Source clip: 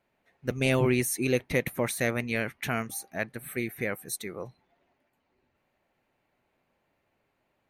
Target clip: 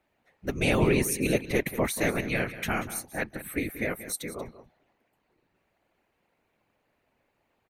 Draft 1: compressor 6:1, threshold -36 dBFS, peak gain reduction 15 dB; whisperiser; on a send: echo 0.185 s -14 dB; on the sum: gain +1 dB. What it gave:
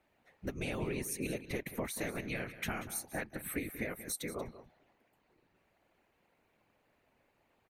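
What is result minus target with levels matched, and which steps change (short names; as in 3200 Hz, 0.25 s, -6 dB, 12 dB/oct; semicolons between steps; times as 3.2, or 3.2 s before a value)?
compressor: peak gain reduction +15 dB
remove: compressor 6:1, threshold -36 dBFS, peak gain reduction 15 dB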